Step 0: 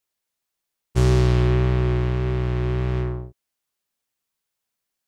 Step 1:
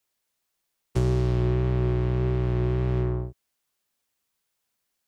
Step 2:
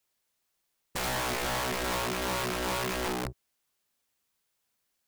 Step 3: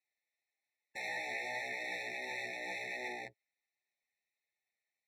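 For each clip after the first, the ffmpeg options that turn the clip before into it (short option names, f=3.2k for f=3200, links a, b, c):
-filter_complex "[0:a]acrossover=split=110|880[a][b][c];[a]acompressor=threshold=-31dB:ratio=4[d];[b]acompressor=threshold=-28dB:ratio=4[e];[c]acompressor=threshold=-47dB:ratio=4[f];[d][e][f]amix=inputs=3:normalize=0,volume=3dB"
-af "aeval=exprs='(mod(21.1*val(0)+1,2)-1)/21.1':c=same"
-af "bandpass=f=1.7k:t=q:w=1.4:csg=0,flanger=delay=7.8:depth=2.4:regen=19:speed=1.3:shape=triangular,afftfilt=real='re*eq(mod(floor(b*sr/1024/880),2),0)':imag='im*eq(mod(floor(b*sr/1024/880),2),0)':win_size=1024:overlap=0.75,volume=4dB"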